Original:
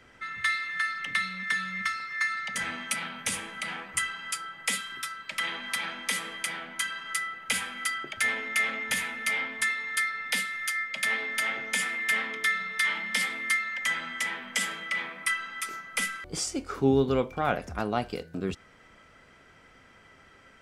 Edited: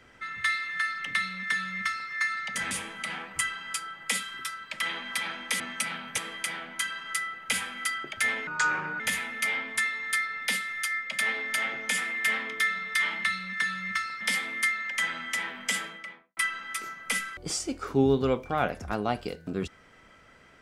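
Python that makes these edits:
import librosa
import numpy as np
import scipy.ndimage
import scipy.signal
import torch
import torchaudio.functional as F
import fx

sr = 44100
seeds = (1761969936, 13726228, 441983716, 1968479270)

y = fx.studio_fade_out(x, sr, start_s=14.59, length_s=0.65)
y = fx.edit(y, sr, fx.duplicate(start_s=1.14, length_s=0.97, to_s=13.08),
    fx.move(start_s=2.71, length_s=0.58, to_s=6.18),
    fx.speed_span(start_s=8.47, length_s=0.37, speed=0.7), tone=tone)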